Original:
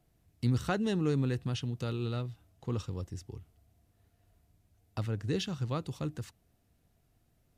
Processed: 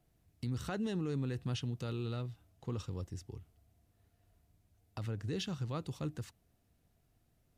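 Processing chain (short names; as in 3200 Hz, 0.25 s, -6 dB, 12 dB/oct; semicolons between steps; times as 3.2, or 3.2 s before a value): limiter -26.5 dBFS, peak gain reduction 8 dB; gain -2.5 dB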